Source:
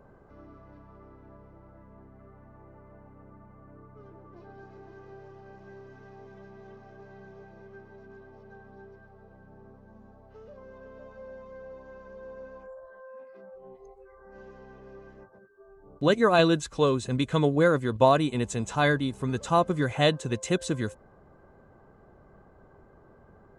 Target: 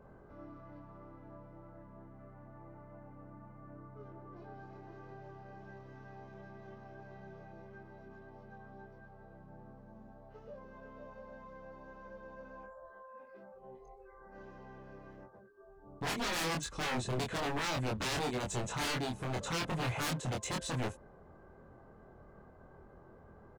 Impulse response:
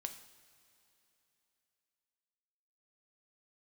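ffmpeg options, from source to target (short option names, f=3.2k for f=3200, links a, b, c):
-filter_complex "[0:a]highshelf=f=4.8k:g=-4.5,asplit=2[a][b];[b]alimiter=limit=-16.5dB:level=0:latency=1,volume=-1dB[c];[a][c]amix=inputs=2:normalize=0,aeval=exprs='0.0708*(abs(mod(val(0)/0.0708+3,4)-2)-1)':c=same,asplit=2[d][e];[e]adelay=24,volume=-3dB[f];[d][f]amix=inputs=2:normalize=0,volume=-8.5dB"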